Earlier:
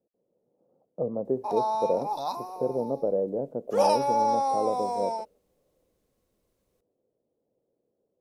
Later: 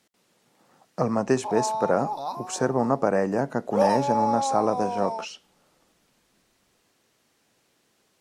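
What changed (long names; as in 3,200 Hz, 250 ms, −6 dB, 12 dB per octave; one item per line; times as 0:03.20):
speech: remove transistor ladder low-pass 580 Hz, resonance 60%
master: add high-shelf EQ 3,900 Hz −6.5 dB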